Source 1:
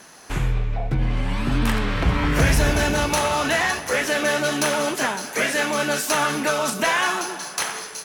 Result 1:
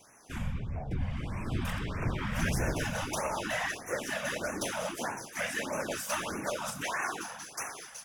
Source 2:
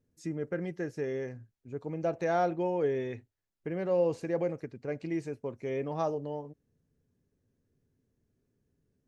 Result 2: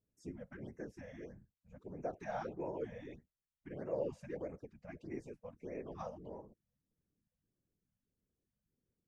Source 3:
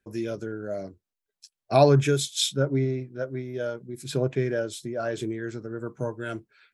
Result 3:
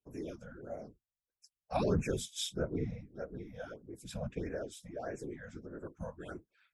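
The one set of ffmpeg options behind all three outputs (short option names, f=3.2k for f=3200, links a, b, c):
-af "afftfilt=real='hypot(re,im)*cos(2*PI*random(0))':imag='hypot(re,im)*sin(2*PI*random(1))':win_size=512:overlap=0.75,bandreject=f=4.2k:w=7.3,afftfilt=real='re*(1-between(b*sr/1024,310*pow(4000/310,0.5+0.5*sin(2*PI*1.6*pts/sr))/1.41,310*pow(4000/310,0.5+0.5*sin(2*PI*1.6*pts/sr))*1.41))':imag='im*(1-between(b*sr/1024,310*pow(4000/310,0.5+0.5*sin(2*PI*1.6*pts/sr))/1.41,310*pow(4000/310,0.5+0.5*sin(2*PI*1.6*pts/sr))*1.41))':win_size=1024:overlap=0.75,volume=-5.5dB"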